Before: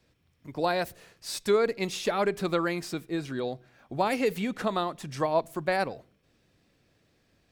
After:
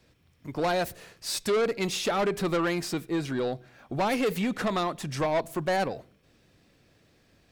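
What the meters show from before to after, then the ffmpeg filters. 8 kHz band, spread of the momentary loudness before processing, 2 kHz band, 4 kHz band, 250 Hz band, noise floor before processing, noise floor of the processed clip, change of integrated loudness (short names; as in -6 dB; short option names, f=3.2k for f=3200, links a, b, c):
+4.0 dB, 11 LU, +1.0 dB, +3.0 dB, +2.0 dB, -69 dBFS, -64 dBFS, +0.5 dB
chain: -af "asoftclip=type=tanh:threshold=-26.5dB,volume=5dB"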